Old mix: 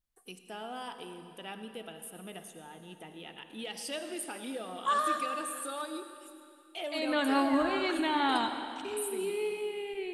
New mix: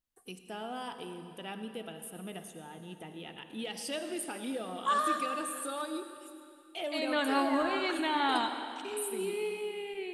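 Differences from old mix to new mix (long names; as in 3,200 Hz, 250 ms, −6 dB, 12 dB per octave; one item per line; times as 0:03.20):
first voice: remove high-pass filter 490 Hz 6 dB per octave
master: add low-shelf EQ 200 Hz −9 dB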